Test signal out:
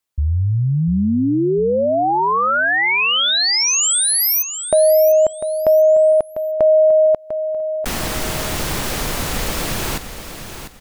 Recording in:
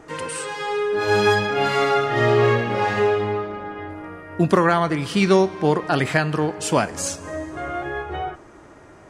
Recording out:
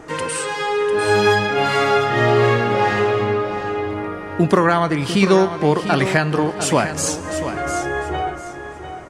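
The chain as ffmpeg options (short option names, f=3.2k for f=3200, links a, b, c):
-filter_complex "[0:a]asplit=2[a][b];[b]acompressor=threshold=-26dB:ratio=6,volume=0dB[c];[a][c]amix=inputs=2:normalize=0,aecho=1:1:698|1396|2094:0.316|0.0791|0.0198"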